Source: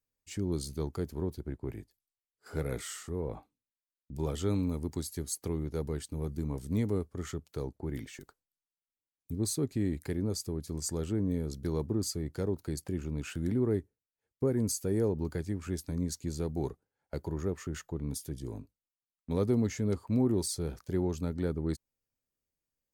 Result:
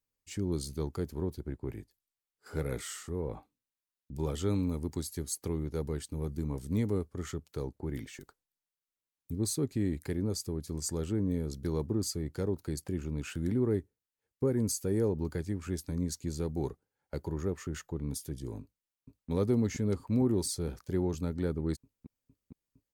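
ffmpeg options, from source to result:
-filter_complex "[0:a]asplit=2[a][b];[b]afade=t=in:st=18.61:d=0.01,afade=t=out:st=19.3:d=0.01,aecho=0:1:460|920|1380|1840|2300|2760|3220|3680|4140|4600|5060|5520:0.794328|0.675179|0.573902|0.487817|0.414644|0.352448|0.299581|0.254643|0.216447|0.18398|0.156383|0.132925[c];[a][c]amix=inputs=2:normalize=0,bandreject=f=670:w=12"

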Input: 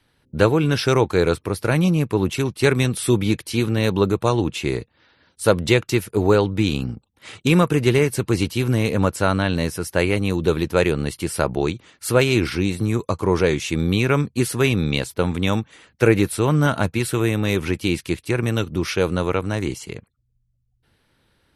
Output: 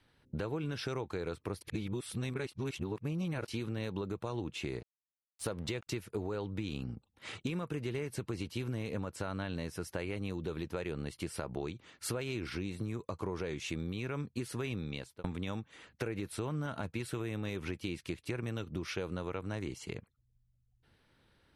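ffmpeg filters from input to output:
-filter_complex "[0:a]asettb=1/sr,asplit=3[a][b][c];[a]atrim=end=4.794[d];[b]atrim=start=4.79:end=5.87,asetpts=PTS-STARTPTS,afade=t=in:d=0.004:c=qsin,afade=t=out:st=1.076:d=0.004:c=qsin,aeval=exprs='sgn(val(0))*max(abs(val(0))-0.00944,0)':c=same[e];[c]atrim=start=5.866[f];[d][e]acrossfade=d=0.004:c1=hsin:c2=qsin[g];[g][f]acrossfade=d=0.004:c1=qsin:c2=hsin,asplit=4[h][i][j][k];[h]atrim=end=1.612[l];[i]atrim=start=1.608:end=3.482,asetpts=PTS-STARTPTS,areverse[m];[j]atrim=start=3.478:end=15.24,asetpts=PTS-STARTPTS,afade=t=out:st=11.262:d=0.5[n];[k]atrim=start=15.24,asetpts=PTS-STARTPTS,afade=t=in:d=0.004:c=hsin[o];[l][m]acrossfade=d=0.004:c1=hsin:c2=hsin[p];[n][o]concat=n=2:v=0:a=1[q];[p][q]acrossfade=d=0.004:c1=hsin:c2=hsin,highshelf=f=9.2k:g=-10.5,alimiter=limit=-10.5dB:level=0:latency=1:release=104,acompressor=threshold=-30dB:ratio=5,volume=-5dB"

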